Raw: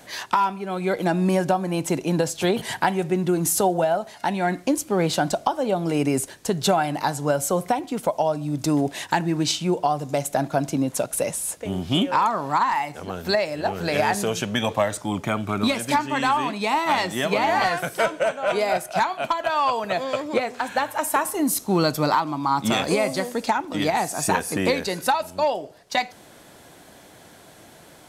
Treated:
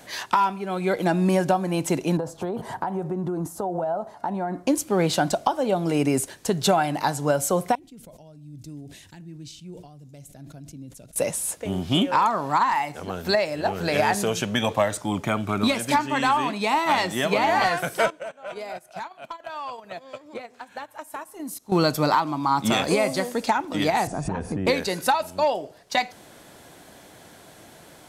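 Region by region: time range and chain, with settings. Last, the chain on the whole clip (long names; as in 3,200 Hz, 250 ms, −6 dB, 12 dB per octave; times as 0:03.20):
0:02.17–0:04.67: downward compressor, threshold −24 dBFS + high shelf with overshoot 1,600 Hz −13 dB, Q 1.5
0:07.75–0:11.16: guitar amp tone stack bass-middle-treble 10-0-1 + level that may fall only so fast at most 51 dB per second
0:18.10–0:21.72: noise gate −25 dBFS, range −14 dB + downward compressor 2 to 1, threshold −41 dBFS
0:24.07–0:24.67: spectral tilt −4.5 dB per octave + downward compressor, threshold −24 dBFS + linear-phase brick-wall low-pass 11,000 Hz
whole clip: no processing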